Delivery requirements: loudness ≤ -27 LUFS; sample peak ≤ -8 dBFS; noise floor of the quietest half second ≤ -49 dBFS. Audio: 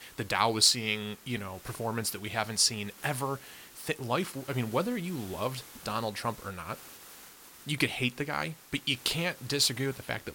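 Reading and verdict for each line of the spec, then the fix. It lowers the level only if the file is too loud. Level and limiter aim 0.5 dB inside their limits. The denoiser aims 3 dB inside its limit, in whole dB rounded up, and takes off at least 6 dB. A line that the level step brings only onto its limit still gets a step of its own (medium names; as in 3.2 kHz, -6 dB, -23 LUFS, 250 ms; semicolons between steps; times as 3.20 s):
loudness -30.5 LUFS: pass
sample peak -9.0 dBFS: pass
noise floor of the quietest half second -52 dBFS: pass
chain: none needed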